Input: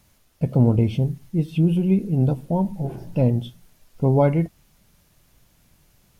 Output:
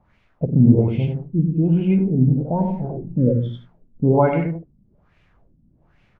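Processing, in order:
multi-tap delay 53/94/168 ms −10/−4/−11 dB
auto-filter low-pass sine 1.2 Hz 220–2,500 Hz
healed spectral selection 0:03.21–0:03.62, 600–3,000 Hz after
level −1.5 dB

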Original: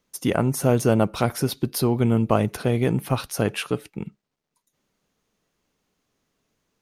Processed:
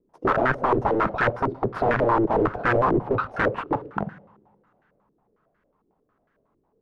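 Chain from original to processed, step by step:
wrap-around overflow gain 20 dB
coupled-rooms reverb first 0.72 s, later 3.1 s, from −19 dB, DRR 12.5 dB
low-pass on a step sequencer 11 Hz 370–1,600 Hz
level +2 dB

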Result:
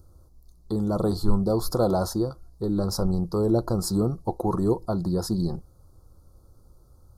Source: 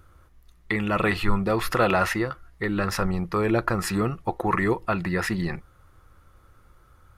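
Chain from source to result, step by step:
elliptic band-stop filter 1,200–4,400 Hz, stop band 70 dB
parametric band 1,200 Hz −13 dB 0.72 octaves
level +2 dB

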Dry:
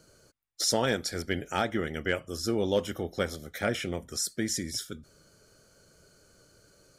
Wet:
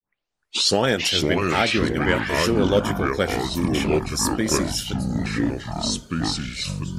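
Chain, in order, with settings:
turntable start at the beginning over 0.84 s
time-frequency box erased 0:03.33–0:03.73, 310–5,100 Hz
delay with pitch and tempo change per echo 261 ms, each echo −5 semitones, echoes 3
level +7 dB

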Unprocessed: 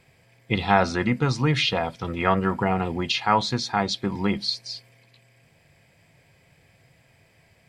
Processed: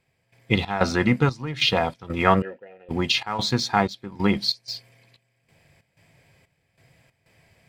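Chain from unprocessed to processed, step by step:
gate pattern "..xx.xxx" 93 BPM −12 dB
in parallel at −6 dB: dead-zone distortion −38.5 dBFS
0:02.42–0:02.89: on the sum: formant filter e

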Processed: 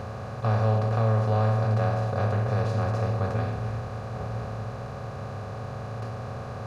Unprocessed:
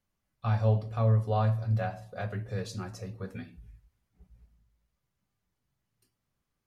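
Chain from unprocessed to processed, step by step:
compressor on every frequency bin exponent 0.2
bass and treble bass +1 dB, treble −10 dB
level −2 dB

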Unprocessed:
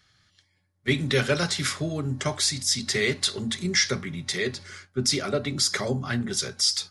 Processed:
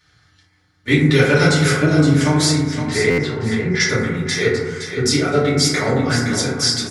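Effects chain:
0:02.60–0:03.80: low-pass filter 2,100 Hz 12 dB per octave
repeating echo 517 ms, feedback 28%, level −8 dB
feedback delay network reverb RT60 1.2 s, low-frequency decay 0.85×, high-frequency decay 0.25×, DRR −9 dB
buffer that repeats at 0:03.10, samples 512, times 6

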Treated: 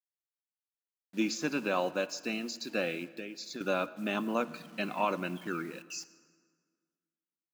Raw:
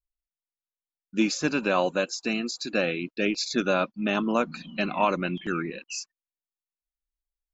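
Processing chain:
hold until the input has moved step −44.5 dBFS
high-pass filter 150 Hz 12 dB per octave
0:03.03–0:03.61: downward compressor 10 to 1, threshold −32 dBFS, peak gain reduction 12.5 dB
convolution reverb RT60 1.7 s, pre-delay 5 ms, DRR 14.5 dB
level −6.5 dB

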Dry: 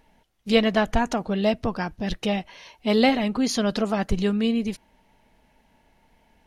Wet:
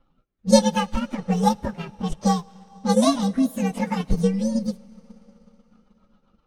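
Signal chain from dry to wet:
partials spread apart or drawn together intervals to 129%
rotating-speaker cabinet horn 1.2 Hz, later 7.5 Hz, at 0:03.69
0:00.77–0:02.92: slack as between gear wheels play −47 dBFS
low-pass that shuts in the quiet parts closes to 2,400 Hz, open at −24.5 dBFS
convolution reverb RT60 3.7 s, pre-delay 25 ms, DRR 18.5 dB
transient designer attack +6 dB, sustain −4 dB
level +3 dB

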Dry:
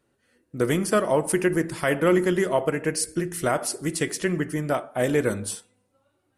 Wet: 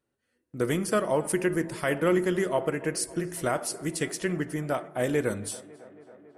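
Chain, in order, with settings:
noise gate −55 dBFS, range −7 dB
on a send: tape delay 277 ms, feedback 86%, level −20 dB, low-pass 2,700 Hz
on the sum: level −4 dB

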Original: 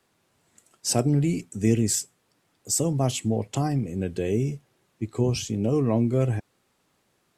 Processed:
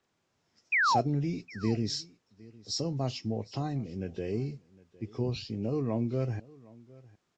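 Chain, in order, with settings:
hearing-aid frequency compression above 2,500 Hz 1.5 to 1
sound drawn into the spectrogram fall, 0:00.72–0:01.01, 630–2,600 Hz −17 dBFS
single-tap delay 759 ms −22.5 dB
level −8 dB

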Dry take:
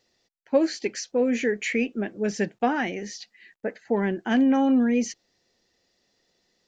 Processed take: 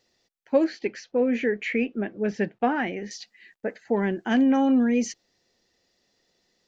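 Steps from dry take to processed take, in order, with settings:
0:00.64–0:03.11: low-pass filter 3,000 Hz 12 dB per octave

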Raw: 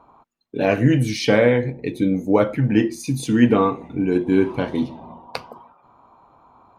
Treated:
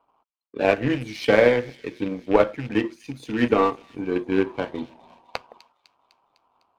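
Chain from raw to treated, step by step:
loose part that buzzes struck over −17 dBFS, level −25 dBFS
three-way crossover with the lows and the highs turned down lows −16 dB, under 360 Hz, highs −13 dB, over 4,600 Hz
power curve on the samples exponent 1.4
low-shelf EQ 300 Hz +8 dB
on a send: delay with a high-pass on its return 252 ms, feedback 62%, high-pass 4,000 Hz, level −13 dB
on the sum: level +2.5 dB

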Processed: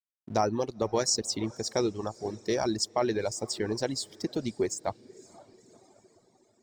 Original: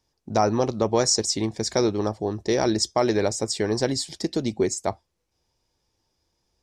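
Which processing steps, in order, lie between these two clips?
dead-zone distortion −48.5 dBFS
feedback delay with all-pass diffusion 509 ms, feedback 47%, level −14 dB
reverb reduction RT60 1.7 s
level −5 dB

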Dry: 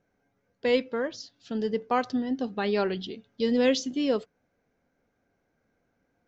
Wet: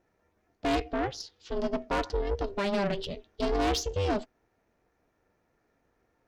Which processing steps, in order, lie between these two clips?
ring modulation 200 Hz
tube saturation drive 28 dB, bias 0.35
level +5.5 dB

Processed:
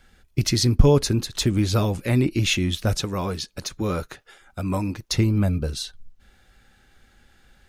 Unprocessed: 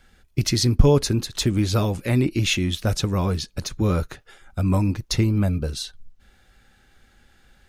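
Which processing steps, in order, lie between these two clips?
0:03.02–0:05.16: low-shelf EQ 180 Hz −10 dB

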